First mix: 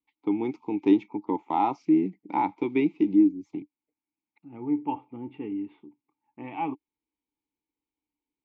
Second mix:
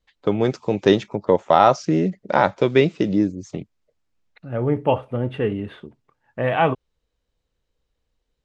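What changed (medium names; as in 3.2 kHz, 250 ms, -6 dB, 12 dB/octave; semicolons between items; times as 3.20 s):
first voice -3.5 dB; master: remove vowel filter u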